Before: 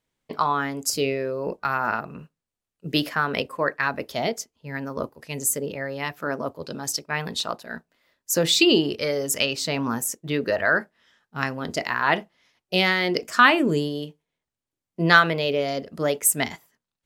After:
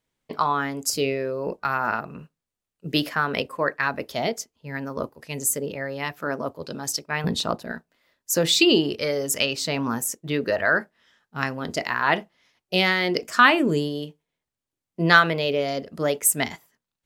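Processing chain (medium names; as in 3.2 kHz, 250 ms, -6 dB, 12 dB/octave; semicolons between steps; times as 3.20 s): 7.24–7.72 s: bass shelf 460 Hz +12 dB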